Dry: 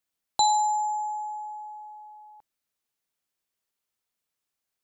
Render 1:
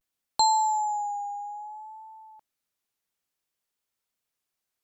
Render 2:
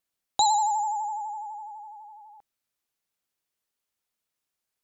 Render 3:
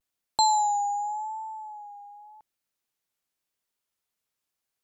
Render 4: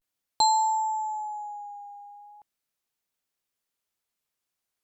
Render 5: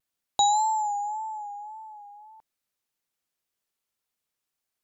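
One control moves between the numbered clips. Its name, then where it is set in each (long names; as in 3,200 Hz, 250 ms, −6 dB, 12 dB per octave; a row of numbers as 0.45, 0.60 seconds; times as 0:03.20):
pitch vibrato, speed: 0.59, 12, 0.87, 0.39, 1.8 Hertz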